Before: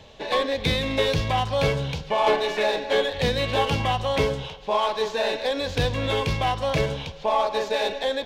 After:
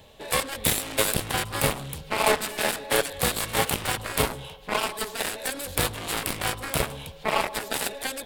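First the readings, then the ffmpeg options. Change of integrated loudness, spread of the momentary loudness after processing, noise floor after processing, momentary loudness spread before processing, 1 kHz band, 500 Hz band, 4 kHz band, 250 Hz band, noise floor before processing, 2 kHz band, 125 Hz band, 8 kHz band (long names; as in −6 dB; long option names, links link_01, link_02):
−2.0 dB, 6 LU, −46 dBFS, 4 LU, −4.0 dB, −7.0 dB, −1.5 dB, −3.5 dB, −41 dBFS, +0.5 dB, −6.5 dB, +14.0 dB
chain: -af "aeval=exprs='0.376*(cos(1*acos(clip(val(0)/0.376,-1,1)))-cos(1*PI/2))+0.0944*(cos(7*acos(clip(val(0)/0.376,-1,1)))-cos(7*PI/2))':channel_layout=same,aexciter=amount=7.1:drive=6.6:freq=8500,volume=-1.5dB"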